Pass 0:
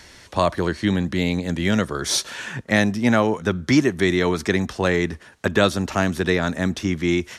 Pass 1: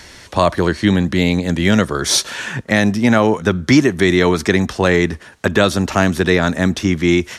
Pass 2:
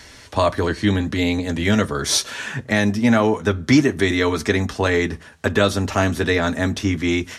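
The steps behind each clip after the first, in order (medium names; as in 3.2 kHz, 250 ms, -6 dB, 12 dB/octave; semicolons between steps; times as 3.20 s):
loudness maximiser +7.5 dB; trim -1 dB
comb of notches 180 Hz; on a send at -19 dB: reverberation RT60 0.35 s, pre-delay 5 ms; on the sum: trim -2.5 dB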